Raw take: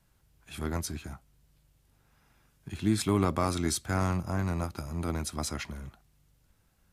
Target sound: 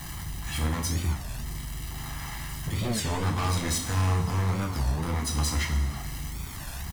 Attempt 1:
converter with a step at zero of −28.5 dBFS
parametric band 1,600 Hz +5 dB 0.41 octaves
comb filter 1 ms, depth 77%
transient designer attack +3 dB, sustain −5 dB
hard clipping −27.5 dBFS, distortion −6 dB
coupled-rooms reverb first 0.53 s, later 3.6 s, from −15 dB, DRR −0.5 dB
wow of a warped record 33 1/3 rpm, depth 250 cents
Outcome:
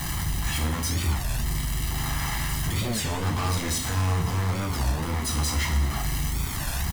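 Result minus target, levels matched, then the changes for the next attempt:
converter with a step at zero: distortion +7 dB
change: converter with a step at zero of −37 dBFS

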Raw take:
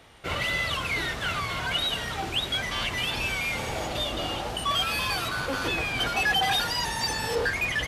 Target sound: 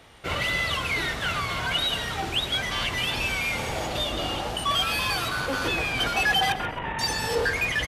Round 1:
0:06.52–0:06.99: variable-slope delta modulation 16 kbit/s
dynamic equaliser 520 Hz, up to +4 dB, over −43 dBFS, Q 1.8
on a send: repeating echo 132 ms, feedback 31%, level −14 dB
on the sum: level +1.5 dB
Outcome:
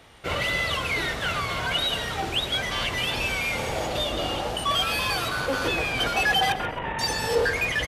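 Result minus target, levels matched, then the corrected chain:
500 Hz band +2.5 dB
0:06.52–0:06.99: variable-slope delta modulation 16 kbit/s
on a send: repeating echo 132 ms, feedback 31%, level −14 dB
on the sum: level +1.5 dB

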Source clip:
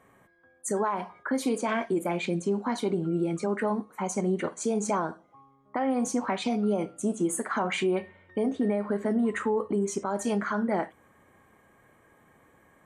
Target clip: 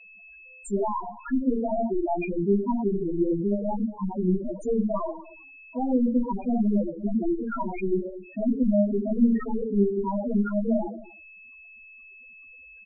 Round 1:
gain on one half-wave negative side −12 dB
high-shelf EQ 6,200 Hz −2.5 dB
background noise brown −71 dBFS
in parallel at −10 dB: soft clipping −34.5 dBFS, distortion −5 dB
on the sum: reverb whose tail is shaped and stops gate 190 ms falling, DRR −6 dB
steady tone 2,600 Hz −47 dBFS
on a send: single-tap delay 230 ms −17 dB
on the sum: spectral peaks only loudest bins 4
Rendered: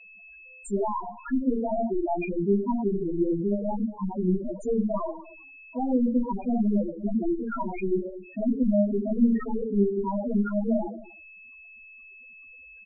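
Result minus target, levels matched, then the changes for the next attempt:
soft clipping: distortion +8 dB
change: soft clipping −25.5 dBFS, distortion −12 dB

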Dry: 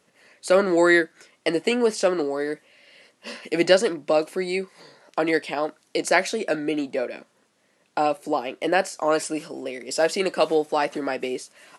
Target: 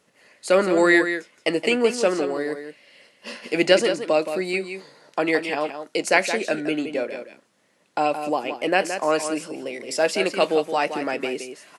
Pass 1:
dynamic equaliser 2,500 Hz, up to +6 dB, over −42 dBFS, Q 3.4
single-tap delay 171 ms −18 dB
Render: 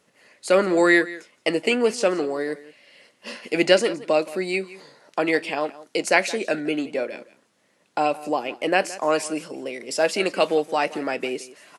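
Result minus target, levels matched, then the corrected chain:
echo-to-direct −9 dB
dynamic equaliser 2,500 Hz, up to +6 dB, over −42 dBFS, Q 3.4
single-tap delay 171 ms −9 dB

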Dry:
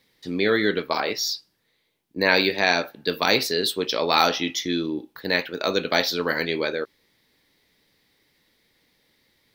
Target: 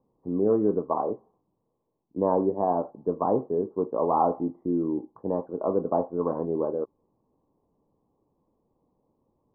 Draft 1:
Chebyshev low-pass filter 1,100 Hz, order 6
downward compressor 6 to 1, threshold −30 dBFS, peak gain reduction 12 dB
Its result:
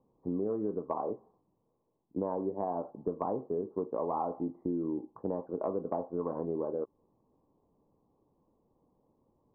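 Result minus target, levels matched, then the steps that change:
downward compressor: peak gain reduction +12 dB
remove: downward compressor 6 to 1, threshold −30 dBFS, peak gain reduction 12 dB

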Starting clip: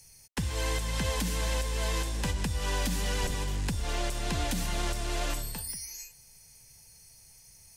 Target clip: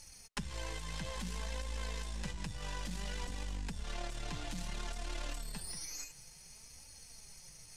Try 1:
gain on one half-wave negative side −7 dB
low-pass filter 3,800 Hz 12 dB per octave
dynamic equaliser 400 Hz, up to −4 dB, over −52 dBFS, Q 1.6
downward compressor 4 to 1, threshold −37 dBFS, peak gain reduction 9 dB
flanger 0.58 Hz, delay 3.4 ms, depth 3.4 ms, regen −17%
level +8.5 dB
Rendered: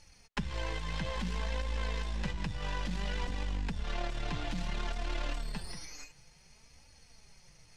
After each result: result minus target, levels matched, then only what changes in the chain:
8,000 Hz band −11.0 dB; downward compressor: peak gain reduction −6 dB
change: low-pass filter 8,900 Hz 12 dB per octave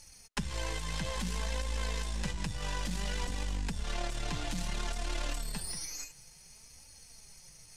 downward compressor: peak gain reduction −5.5 dB
change: downward compressor 4 to 1, threshold −44.5 dBFS, peak gain reduction 15 dB

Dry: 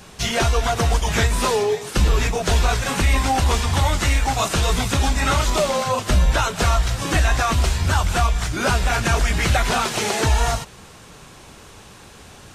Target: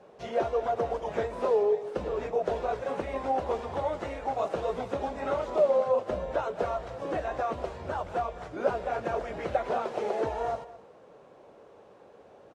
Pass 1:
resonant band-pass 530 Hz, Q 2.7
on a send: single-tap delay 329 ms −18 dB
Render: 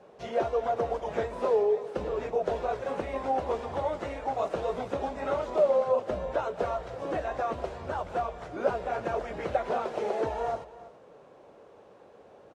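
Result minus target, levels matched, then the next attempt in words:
echo 116 ms late
resonant band-pass 530 Hz, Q 2.7
on a send: single-tap delay 213 ms −18 dB

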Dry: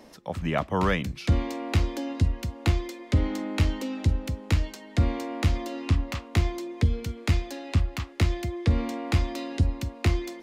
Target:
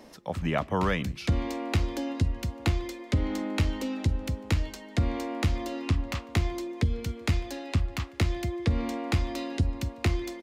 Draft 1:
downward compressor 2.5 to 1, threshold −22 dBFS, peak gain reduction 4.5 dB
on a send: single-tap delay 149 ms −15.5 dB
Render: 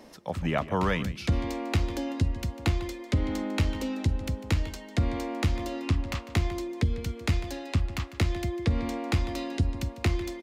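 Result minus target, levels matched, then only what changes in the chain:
echo-to-direct +12 dB
change: single-tap delay 149 ms −27.5 dB

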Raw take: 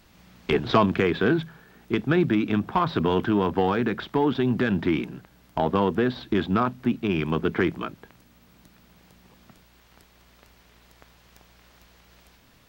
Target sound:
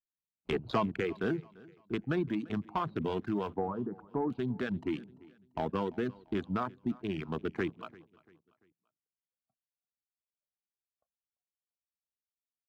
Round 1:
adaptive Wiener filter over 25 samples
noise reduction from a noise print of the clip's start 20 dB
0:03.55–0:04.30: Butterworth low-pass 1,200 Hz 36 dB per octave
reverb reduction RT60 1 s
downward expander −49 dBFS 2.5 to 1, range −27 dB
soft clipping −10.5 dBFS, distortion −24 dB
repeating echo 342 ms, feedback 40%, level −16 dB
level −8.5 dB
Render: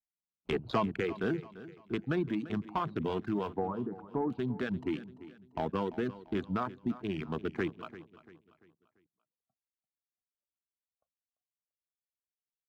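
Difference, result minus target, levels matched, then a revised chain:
echo-to-direct +6.5 dB
adaptive Wiener filter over 25 samples
noise reduction from a noise print of the clip's start 20 dB
0:03.55–0:04.30: Butterworth low-pass 1,200 Hz 36 dB per octave
reverb reduction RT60 1 s
downward expander −49 dBFS 2.5 to 1, range −27 dB
soft clipping −10.5 dBFS, distortion −24 dB
repeating echo 342 ms, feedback 40%, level −22.5 dB
level −8.5 dB

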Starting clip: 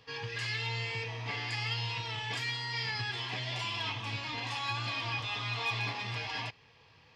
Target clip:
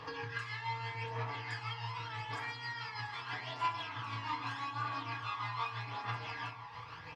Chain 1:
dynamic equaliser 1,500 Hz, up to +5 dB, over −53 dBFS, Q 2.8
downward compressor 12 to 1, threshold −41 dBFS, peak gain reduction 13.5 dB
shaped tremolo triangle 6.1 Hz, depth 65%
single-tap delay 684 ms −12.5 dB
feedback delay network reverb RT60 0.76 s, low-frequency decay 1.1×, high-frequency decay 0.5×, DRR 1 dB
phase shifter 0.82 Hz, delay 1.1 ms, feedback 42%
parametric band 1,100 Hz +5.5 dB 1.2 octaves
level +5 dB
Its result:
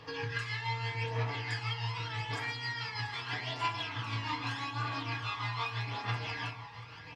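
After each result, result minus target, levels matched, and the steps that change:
downward compressor: peak gain reduction −7.5 dB; 1,000 Hz band −3.5 dB
change: downward compressor 12 to 1, threshold −49 dBFS, peak gain reduction 20.5 dB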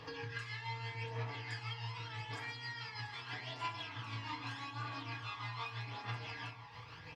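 1,000 Hz band −3.5 dB
change: parametric band 1,100 Hz +13.5 dB 1.2 octaves

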